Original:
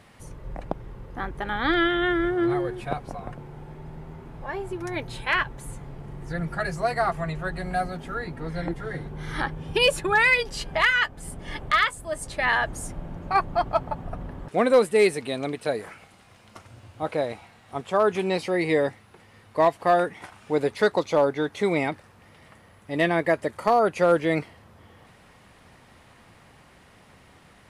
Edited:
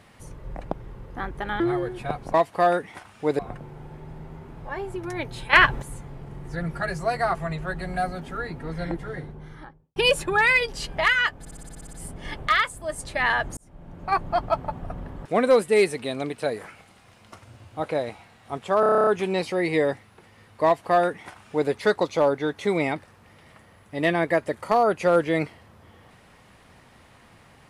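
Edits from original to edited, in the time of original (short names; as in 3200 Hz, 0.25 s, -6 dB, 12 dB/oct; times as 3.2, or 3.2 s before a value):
1.6–2.42 cut
5.3–5.59 gain +8.5 dB
8.68–9.73 studio fade out
11.16 stutter 0.06 s, 10 plays
12.8–13.47 fade in
18.03 stutter 0.03 s, 10 plays
19.61–20.66 copy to 3.16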